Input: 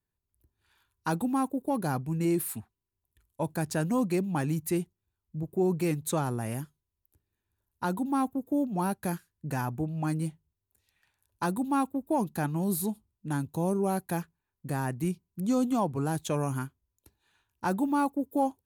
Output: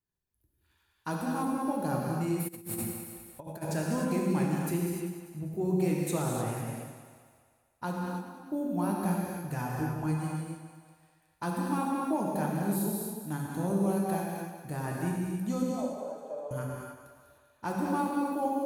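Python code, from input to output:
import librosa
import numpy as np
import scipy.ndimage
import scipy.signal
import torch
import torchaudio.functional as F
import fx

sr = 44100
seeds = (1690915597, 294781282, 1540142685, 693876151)

y = fx.level_steps(x, sr, step_db=23, at=(7.91, 8.49), fade=0.02)
y = fx.ladder_bandpass(y, sr, hz=600.0, resonance_pct=75, at=(15.62, 16.51))
y = fx.echo_split(y, sr, split_hz=520.0, low_ms=130, high_ms=197, feedback_pct=52, wet_db=-10.0)
y = fx.rev_gated(y, sr, seeds[0], gate_ms=330, shape='flat', drr_db=-2.5)
y = fx.over_compress(y, sr, threshold_db=-35.0, ratio=-0.5, at=(2.47, 3.61), fade=0.02)
y = y * 10.0 ** (-6.0 / 20.0)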